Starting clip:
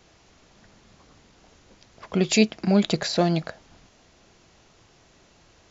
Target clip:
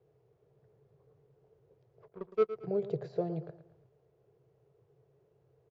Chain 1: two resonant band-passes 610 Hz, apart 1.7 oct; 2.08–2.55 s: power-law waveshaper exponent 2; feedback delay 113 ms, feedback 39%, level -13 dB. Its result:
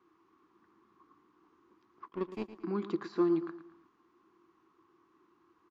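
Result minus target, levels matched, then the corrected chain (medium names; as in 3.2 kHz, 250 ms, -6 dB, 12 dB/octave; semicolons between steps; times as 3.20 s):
250 Hz band +8.0 dB
two resonant band-passes 240 Hz, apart 1.7 oct; 2.08–2.55 s: power-law waveshaper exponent 2; feedback delay 113 ms, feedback 39%, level -13 dB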